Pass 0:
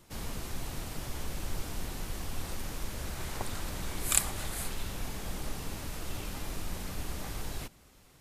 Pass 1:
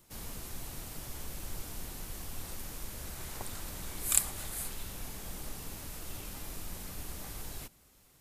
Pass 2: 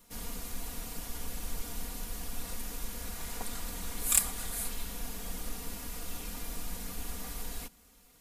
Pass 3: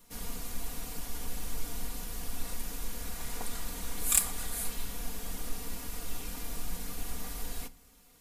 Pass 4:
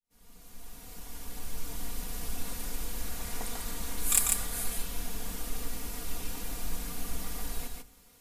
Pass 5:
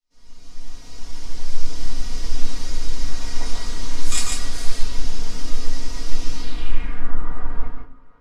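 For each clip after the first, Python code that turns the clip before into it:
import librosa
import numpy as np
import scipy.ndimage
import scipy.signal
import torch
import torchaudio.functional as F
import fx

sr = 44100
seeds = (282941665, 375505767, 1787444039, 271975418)

y1 = fx.high_shelf(x, sr, hz=8000.0, db=11.0)
y1 = F.gain(torch.from_numpy(y1), -6.0).numpy()
y2 = y1 + 0.86 * np.pad(y1, (int(4.2 * sr / 1000.0), 0))[:len(y1)]
y2 = np.clip(y2, -10.0 ** (-9.0 / 20.0), 10.0 ** (-9.0 / 20.0))
y3 = fx.room_shoebox(y2, sr, seeds[0], volume_m3=140.0, walls='furnished', distance_m=0.37)
y4 = fx.fade_in_head(y3, sr, length_s=2.14)
y4 = y4 + 10.0 ** (-3.5 / 20.0) * np.pad(y4, (int(145 * sr / 1000.0), 0))[:len(y4)]
y5 = fx.filter_sweep_lowpass(y4, sr, from_hz=5400.0, to_hz=1300.0, start_s=6.33, end_s=7.15, q=2.5)
y5 = fx.room_shoebox(y5, sr, seeds[1], volume_m3=160.0, walls='furnished', distance_m=2.7)
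y5 = F.gain(torch.from_numpy(y5), -1.5).numpy()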